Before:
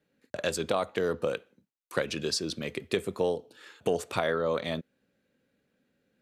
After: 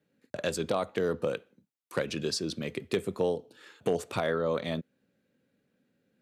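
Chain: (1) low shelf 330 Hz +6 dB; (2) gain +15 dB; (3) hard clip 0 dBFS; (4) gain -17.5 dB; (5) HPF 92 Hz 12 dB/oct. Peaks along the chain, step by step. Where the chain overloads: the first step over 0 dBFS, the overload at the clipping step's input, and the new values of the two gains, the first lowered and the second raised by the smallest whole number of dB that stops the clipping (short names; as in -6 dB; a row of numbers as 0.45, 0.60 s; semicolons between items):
-10.0, +5.0, 0.0, -17.5, -15.5 dBFS; step 2, 5.0 dB; step 2 +10 dB, step 4 -12.5 dB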